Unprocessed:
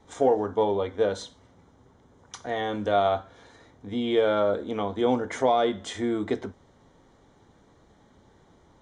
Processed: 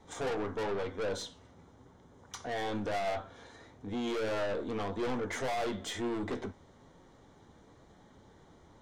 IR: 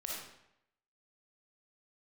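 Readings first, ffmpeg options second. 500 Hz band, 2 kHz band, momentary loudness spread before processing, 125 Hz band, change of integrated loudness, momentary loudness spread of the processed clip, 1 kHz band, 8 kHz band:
-10.5 dB, -3.5 dB, 10 LU, -5.0 dB, -9.5 dB, 12 LU, -10.0 dB, -1.5 dB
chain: -af "aeval=exprs='(tanh(35.5*val(0)+0.15)-tanh(0.15))/35.5':c=same,flanger=delay=5.4:depth=8:regen=78:speed=1:shape=sinusoidal,volume=1.58"

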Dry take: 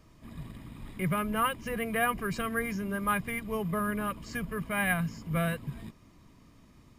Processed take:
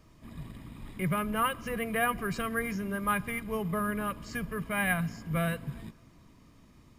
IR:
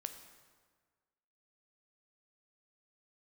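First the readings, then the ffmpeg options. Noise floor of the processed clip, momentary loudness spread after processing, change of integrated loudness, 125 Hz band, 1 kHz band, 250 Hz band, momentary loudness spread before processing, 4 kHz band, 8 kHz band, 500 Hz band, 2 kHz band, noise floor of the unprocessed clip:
-58 dBFS, 16 LU, -0.5 dB, -0.5 dB, -0.5 dB, -0.5 dB, 16 LU, -0.5 dB, -0.5 dB, -0.5 dB, 0.0 dB, -58 dBFS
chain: -filter_complex "[0:a]asplit=2[s0][s1];[1:a]atrim=start_sample=2205[s2];[s1][s2]afir=irnorm=-1:irlink=0,volume=0.422[s3];[s0][s3]amix=inputs=2:normalize=0,volume=0.75"

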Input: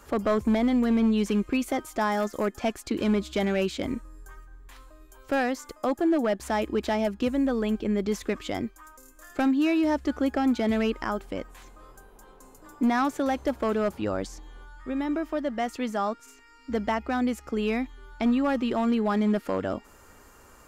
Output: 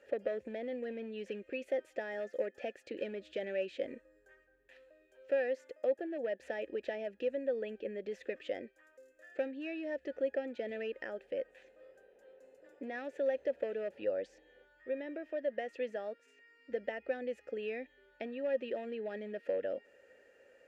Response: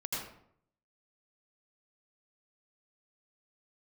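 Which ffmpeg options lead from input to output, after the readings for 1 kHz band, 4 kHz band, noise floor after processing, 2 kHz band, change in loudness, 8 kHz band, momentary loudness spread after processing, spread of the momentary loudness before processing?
-20.0 dB, -15.5 dB, -68 dBFS, -10.5 dB, -11.5 dB, under -25 dB, 8 LU, 10 LU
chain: -filter_complex "[0:a]acompressor=threshold=0.0562:ratio=6,asplit=3[s0][s1][s2];[s0]bandpass=f=530:t=q:w=8,volume=1[s3];[s1]bandpass=f=1840:t=q:w=8,volume=0.501[s4];[s2]bandpass=f=2480:t=q:w=8,volume=0.355[s5];[s3][s4][s5]amix=inputs=3:normalize=0,volume=1.5"

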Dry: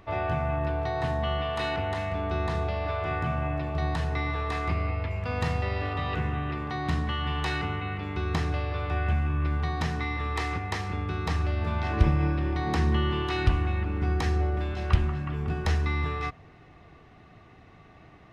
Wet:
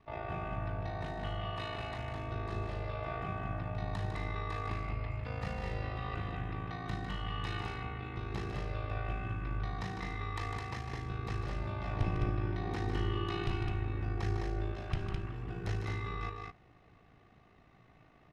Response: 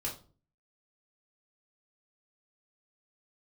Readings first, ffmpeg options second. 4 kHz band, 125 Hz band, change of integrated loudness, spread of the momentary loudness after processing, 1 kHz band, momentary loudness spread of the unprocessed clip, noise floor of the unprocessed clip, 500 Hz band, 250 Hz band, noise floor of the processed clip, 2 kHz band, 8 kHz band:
-9.0 dB, -8.5 dB, -9.0 dB, 5 LU, -9.0 dB, 5 LU, -53 dBFS, -9.5 dB, -9.0 dB, -62 dBFS, -9.5 dB, no reading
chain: -af "aeval=exprs='val(0)*sin(2*PI*27*n/s)':c=same,aecho=1:1:151.6|209.9:0.447|0.631,volume=0.376"

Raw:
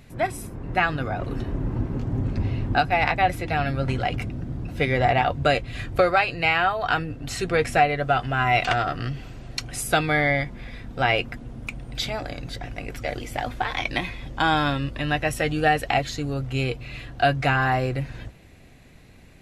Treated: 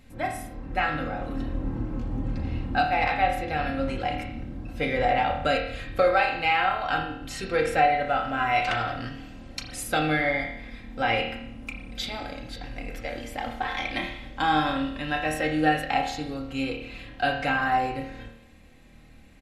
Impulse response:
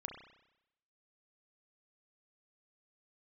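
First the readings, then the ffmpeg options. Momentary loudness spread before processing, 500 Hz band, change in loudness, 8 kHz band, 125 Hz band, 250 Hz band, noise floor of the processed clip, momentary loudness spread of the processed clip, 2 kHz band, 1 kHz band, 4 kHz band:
13 LU, -3.0 dB, -2.5 dB, -5.0 dB, -8.5 dB, -1.5 dB, -50 dBFS, 15 LU, -3.0 dB, -1.5 dB, -3.0 dB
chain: -filter_complex "[0:a]aecho=1:1:3.8:0.53[s0];[1:a]atrim=start_sample=2205,asetrate=52920,aresample=44100[s1];[s0][s1]afir=irnorm=-1:irlink=0"

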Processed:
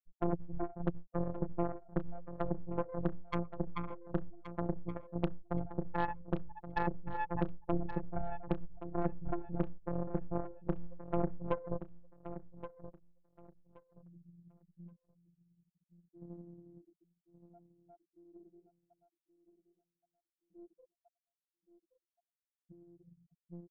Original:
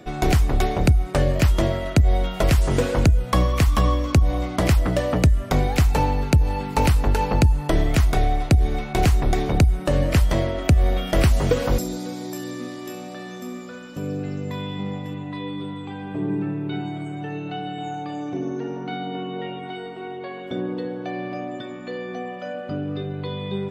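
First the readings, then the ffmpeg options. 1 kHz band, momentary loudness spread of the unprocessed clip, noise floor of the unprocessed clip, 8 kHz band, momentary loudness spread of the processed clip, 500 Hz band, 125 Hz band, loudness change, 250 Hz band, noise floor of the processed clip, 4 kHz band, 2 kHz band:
-15.5 dB, 13 LU, -35 dBFS, under -40 dB, 18 LU, -16.0 dB, -22.0 dB, -17.0 dB, -15.0 dB, under -85 dBFS, under -30 dB, -20.0 dB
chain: -filter_complex "[0:a]afftfilt=real='re*gte(hypot(re,im),0.355)':imag='im*gte(hypot(re,im),0.355)':win_size=1024:overlap=0.75,lowpass=f=1700:t=q:w=1.9,aresample=8000,asoftclip=type=tanh:threshold=0.299,aresample=44100,afftfilt=real='hypot(re,im)*cos(PI*b)':imag='0':win_size=1024:overlap=0.75,aeval=exprs='0.335*(cos(1*acos(clip(val(0)/0.335,-1,1)))-cos(1*PI/2))+0.0841*(cos(3*acos(clip(val(0)/0.335,-1,1)))-cos(3*PI/2))+0.075*(cos(6*acos(clip(val(0)/0.335,-1,1)))-cos(6*PI/2))+0.0376*(cos(8*acos(clip(val(0)/0.335,-1,1)))-cos(8*PI/2))':c=same,asplit=2[s0][s1];[s1]aecho=0:1:1124|2248|3372:0.251|0.0527|0.0111[s2];[s0][s2]amix=inputs=2:normalize=0,volume=0.473"

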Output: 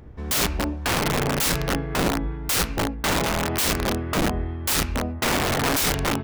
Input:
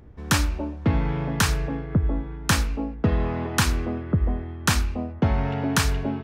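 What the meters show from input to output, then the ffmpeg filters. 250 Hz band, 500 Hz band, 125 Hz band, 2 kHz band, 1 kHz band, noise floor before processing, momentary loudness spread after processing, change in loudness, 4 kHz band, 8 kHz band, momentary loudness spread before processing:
-0.5 dB, +4.5 dB, -4.0 dB, +2.5 dB, +4.0 dB, -36 dBFS, 4 LU, +1.5 dB, +4.5 dB, +4.5 dB, 5 LU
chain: -af "bandreject=f=50:t=h:w=6,bandreject=f=100:t=h:w=6,bandreject=f=150:t=h:w=6,bandreject=f=200:t=h:w=6,bandreject=f=250:t=h:w=6,bandreject=f=300:t=h:w=6,bandreject=f=350:t=h:w=6,bandreject=f=400:t=h:w=6,aeval=exprs='(mod(11.9*val(0)+1,2)-1)/11.9':c=same,volume=1.68"

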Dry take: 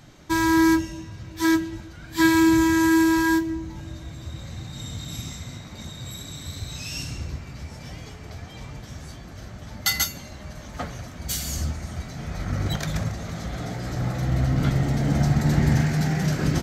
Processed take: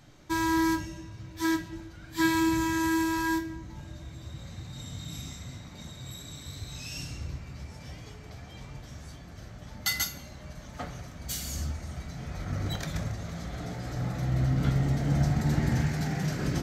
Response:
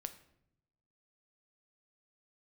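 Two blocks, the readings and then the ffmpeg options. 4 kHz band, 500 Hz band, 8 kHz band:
-6.0 dB, -8.0 dB, -6.0 dB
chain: -filter_complex "[1:a]atrim=start_sample=2205[s0];[0:a][s0]afir=irnorm=-1:irlink=0,volume=0.708"

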